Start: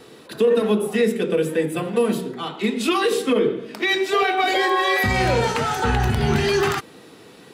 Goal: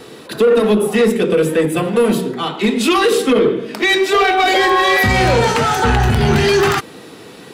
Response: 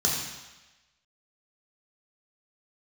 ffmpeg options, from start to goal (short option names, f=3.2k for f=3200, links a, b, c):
-af "asoftclip=type=tanh:threshold=-15dB,volume=8.5dB"